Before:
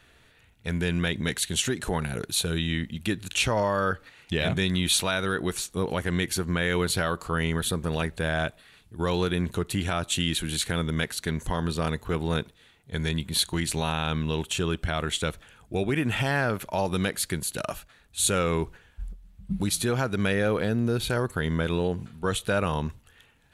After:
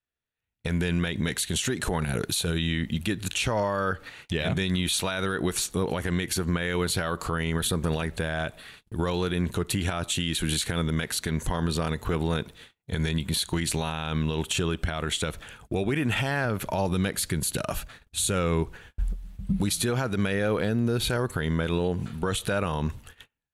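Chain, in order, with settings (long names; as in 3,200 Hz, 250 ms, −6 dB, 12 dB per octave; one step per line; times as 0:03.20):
automatic gain control gain up to 16 dB
0:16.45–0:18.63: low-shelf EQ 240 Hz +5.5 dB
noise gate −41 dBFS, range −33 dB
downward compressor, threshold −18 dBFS, peak gain reduction 10.5 dB
brickwall limiter −14 dBFS, peak gain reduction 7.5 dB
level −3 dB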